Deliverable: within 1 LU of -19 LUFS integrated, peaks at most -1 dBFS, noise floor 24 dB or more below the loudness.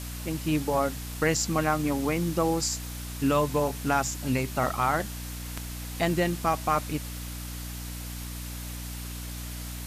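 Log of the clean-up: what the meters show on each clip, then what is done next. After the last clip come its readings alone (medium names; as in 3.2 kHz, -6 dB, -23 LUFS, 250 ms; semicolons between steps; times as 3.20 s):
hum 60 Hz; highest harmonic 300 Hz; hum level -35 dBFS; noise floor -37 dBFS; noise floor target -53 dBFS; loudness -29.0 LUFS; peak level -12.0 dBFS; loudness target -19.0 LUFS
-> de-hum 60 Hz, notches 5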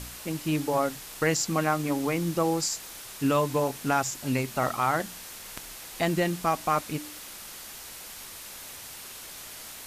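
hum not found; noise floor -43 dBFS; noise floor target -52 dBFS
-> noise reduction 9 dB, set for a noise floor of -43 dBFS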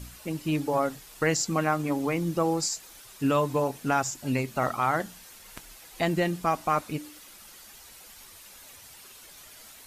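noise floor -50 dBFS; noise floor target -52 dBFS
-> noise reduction 6 dB, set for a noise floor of -50 dBFS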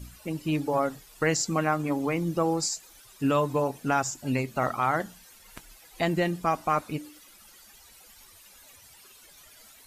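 noise floor -54 dBFS; loudness -28.0 LUFS; peak level -12.5 dBFS; loudness target -19.0 LUFS
-> trim +9 dB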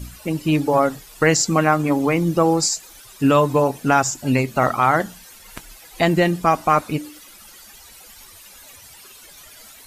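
loudness -19.0 LUFS; peak level -3.5 dBFS; noise floor -45 dBFS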